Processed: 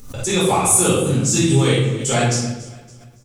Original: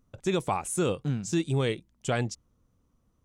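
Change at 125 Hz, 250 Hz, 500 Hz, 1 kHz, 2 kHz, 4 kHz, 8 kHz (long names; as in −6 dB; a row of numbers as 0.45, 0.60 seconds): +12.5, +11.0, +10.5, +11.5, +12.0, +15.0, +20.5 decibels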